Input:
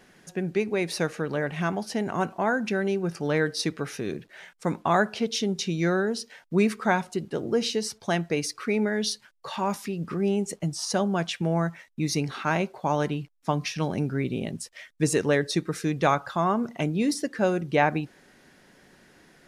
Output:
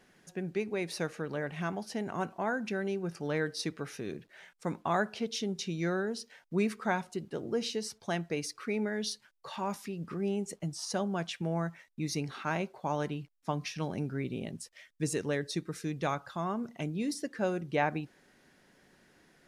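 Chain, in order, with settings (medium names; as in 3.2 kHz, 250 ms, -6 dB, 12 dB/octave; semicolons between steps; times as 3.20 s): 14.74–17.22 s: peaking EQ 940 Hz -3.5 dB 2.8 oct; trim -7.5 dB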